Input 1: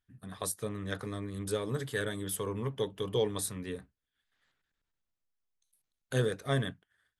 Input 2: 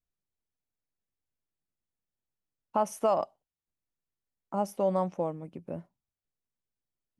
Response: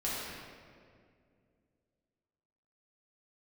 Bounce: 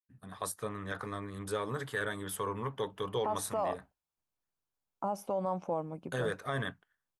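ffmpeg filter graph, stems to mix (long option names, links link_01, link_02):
-filter_complex "[0:a]agate=range=-33dB:threshold=-58dB:ratio=3:detection=peak,adynamicequalizer=threshold=0.00355:dfrequency=1400:dqfactor=0.82:tfrequency=1400:tqfactor=0.82:attack=5:release=100:ratio=0.375:range=3:mode=boostabove:tftype=bell,volume=-4.5dB[link_01];[1:a]bandreject=frequency=1900:width=6.2,acompressor=threshold=-28dB:ratio=6,adelay=500,volume=-1dB[link_02];[link_01][link_02]amix=inputs=2:normalize=0,equalizer=frequency=940:width_type=o:width=1.4:gain=7,alimiter=limit=-23.5dB:level=0:latency=1:release=32"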